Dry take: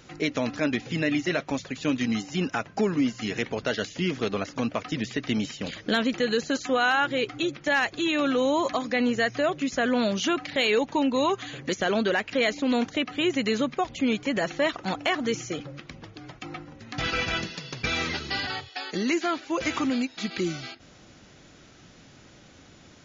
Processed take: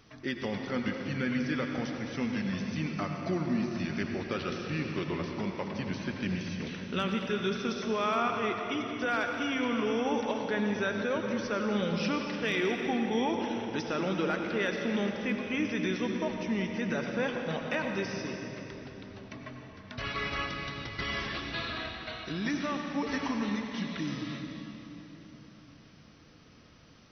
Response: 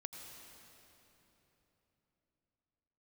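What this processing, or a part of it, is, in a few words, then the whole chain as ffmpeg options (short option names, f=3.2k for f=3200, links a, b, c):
slowed and reverbed: -filter_complex "[0:a]asetrate=37485,aresample=44100[a];[1:a]atrim=start_sample=2205[b];[a][b]afir=irnorm=-1:irlink=0,volume=-2.5dB"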